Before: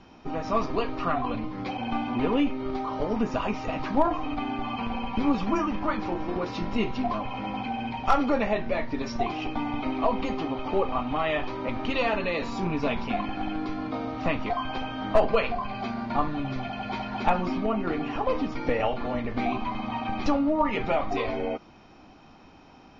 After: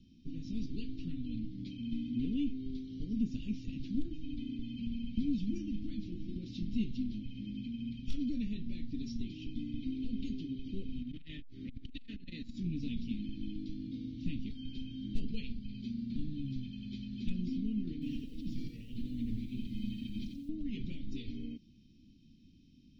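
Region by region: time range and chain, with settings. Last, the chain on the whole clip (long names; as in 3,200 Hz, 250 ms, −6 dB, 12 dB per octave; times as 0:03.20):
0:11.01–0:12.64: flat-topped bell 1,400 Hz +10 dB 1.3 octaves + saturating transformer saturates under 340 Hz
0:17.93–0:20.49: compressor whose output falls as the input rises −31 dBFS + feedback echo at a low word length 88 ms, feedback 35%, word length 9 bits, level −5 dB
whole clip: Chebyshev band-stop filter 250–3,400 Hz, order 3; high-shelf EQ 2,800 Hz −8 dB; level −4.5 dB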